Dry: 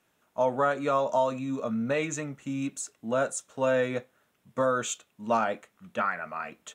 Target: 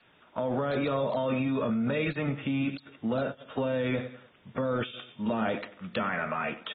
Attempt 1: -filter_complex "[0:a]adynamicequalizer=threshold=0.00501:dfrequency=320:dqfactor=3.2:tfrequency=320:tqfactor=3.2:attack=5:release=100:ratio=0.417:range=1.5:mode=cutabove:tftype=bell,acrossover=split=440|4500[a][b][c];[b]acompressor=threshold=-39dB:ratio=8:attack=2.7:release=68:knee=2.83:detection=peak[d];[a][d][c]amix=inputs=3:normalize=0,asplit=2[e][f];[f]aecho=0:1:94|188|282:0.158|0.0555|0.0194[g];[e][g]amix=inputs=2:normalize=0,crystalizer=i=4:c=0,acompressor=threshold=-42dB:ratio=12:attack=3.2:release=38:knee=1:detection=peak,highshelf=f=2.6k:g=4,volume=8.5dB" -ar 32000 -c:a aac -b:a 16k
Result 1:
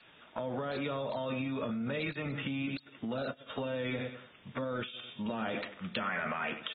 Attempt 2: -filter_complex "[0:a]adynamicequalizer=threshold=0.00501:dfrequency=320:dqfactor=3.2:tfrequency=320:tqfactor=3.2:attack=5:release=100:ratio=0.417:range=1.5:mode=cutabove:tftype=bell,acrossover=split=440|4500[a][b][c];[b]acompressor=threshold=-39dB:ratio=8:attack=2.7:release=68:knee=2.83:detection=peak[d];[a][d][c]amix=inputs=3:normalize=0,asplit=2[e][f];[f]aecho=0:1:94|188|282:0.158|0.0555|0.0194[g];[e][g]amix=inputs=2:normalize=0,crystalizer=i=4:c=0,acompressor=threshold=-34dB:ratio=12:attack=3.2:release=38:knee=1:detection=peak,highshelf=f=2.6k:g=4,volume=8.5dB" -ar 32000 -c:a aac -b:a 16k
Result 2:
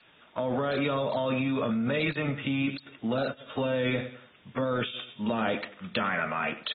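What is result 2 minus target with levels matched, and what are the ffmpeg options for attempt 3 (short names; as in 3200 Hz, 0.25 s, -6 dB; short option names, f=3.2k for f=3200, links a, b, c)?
4000 Hz band +4.5 dB
-filter_complex "[0:a]adynamicequalizer=threshold=0.00501:dfrequency=320:dqfactor=3.2:tfrequency=320:tqfactor=3.2:attack=5:release=100:ratio=0.417:range=1.5:mode=cutabove:tftype=bell,acrossover=split=440|4500[a][b][c];[b]acompressor=threshold=-39dB:ratio=8:attack=2.7:release=68:knee=2.83:detection=peak[d];[a][d][c]amix=inputs=3:normalize=0,asplit=2[e][f];[f]aecho=0:1:94|188|282:0.158|0.0555|0.0194[g];[e][g]amix=inputs=2:normalize=0,crystalizer=i=4:c=0,acompressor=threshold=-34dB:ratio=12:attack=3.2:release=38:knee=1:detection=peak,highshelf=f=2.6k:g=-4.5,volume=8.5dB" -ar 32000 -c:a aac -b:a 16k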